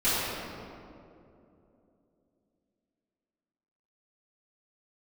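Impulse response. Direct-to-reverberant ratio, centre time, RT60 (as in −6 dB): −15.5 dB, 173 ms, 2.8 s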